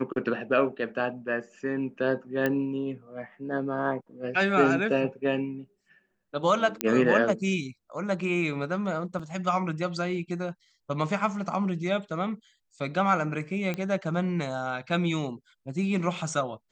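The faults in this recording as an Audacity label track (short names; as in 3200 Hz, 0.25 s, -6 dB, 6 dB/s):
2.460000	2.460000	pop -14 dBFS
6.810000	6.810000	pop -8 dBFS
9.190000	9.200000	gap 5.1 ms
13.740000	13.740000	pop -18 dBFS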